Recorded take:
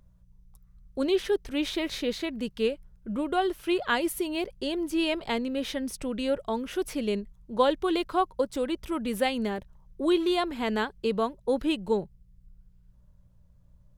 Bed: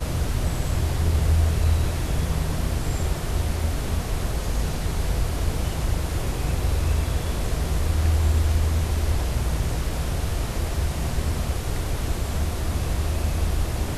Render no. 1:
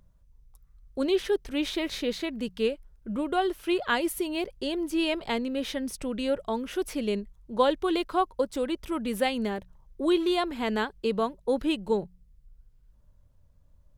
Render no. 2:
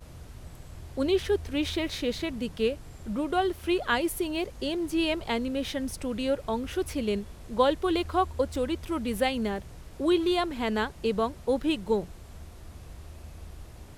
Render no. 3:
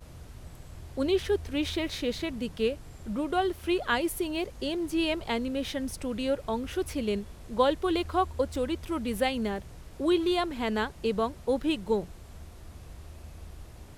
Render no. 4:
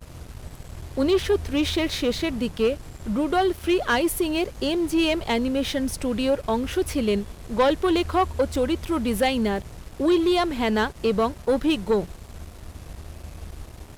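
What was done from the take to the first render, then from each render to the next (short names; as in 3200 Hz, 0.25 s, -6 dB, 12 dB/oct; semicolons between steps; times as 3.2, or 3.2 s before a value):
de-hum 60 Hz, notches 3
add bed -20.5 dB
gain -1 dB
sample leveller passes 2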